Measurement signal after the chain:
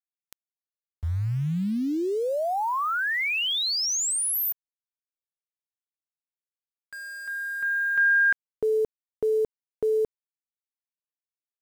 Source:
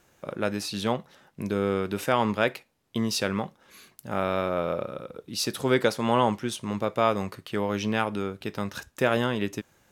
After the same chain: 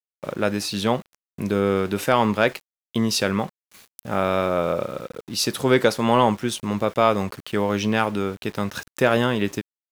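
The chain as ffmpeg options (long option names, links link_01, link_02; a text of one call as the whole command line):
ffmpeg -i in.wav -af "aeval=exprs='val(0)*gte(abs(val(0)),0.00531)':channel_layout=same,acontrast=36" out.wav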